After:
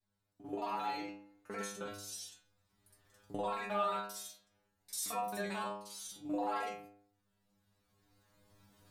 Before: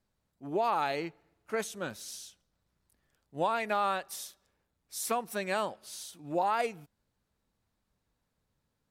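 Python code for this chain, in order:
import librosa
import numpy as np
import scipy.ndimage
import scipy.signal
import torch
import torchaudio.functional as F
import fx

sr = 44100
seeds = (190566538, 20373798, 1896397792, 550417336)

y = fx.local_reverse(x, sr, ms=44.0)
y = fx.recorder_agc(y, sr, target_db=-22.0, rise_db_per_s=11.0, max_gain_db=30)
y = fx.stiff_resonator(y, sr, f0_hz=99.0, decay_s=0.7, stiffness=0.002)
y = y * 10.0 ** (6.5 / 20.0)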